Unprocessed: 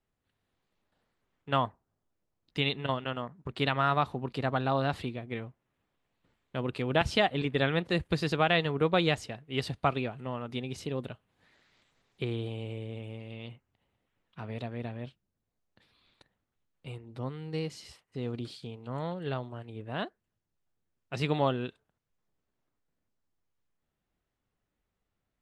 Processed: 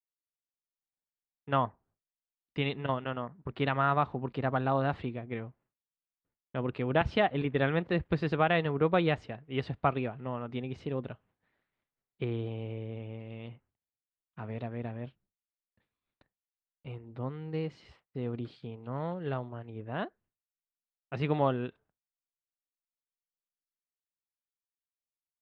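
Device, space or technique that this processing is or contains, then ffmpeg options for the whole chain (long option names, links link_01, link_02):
hearing-loss simulation: -af "lowpass=2200,agate=range=-33dB:threshold=-59dB:ratio=3:detection=peak"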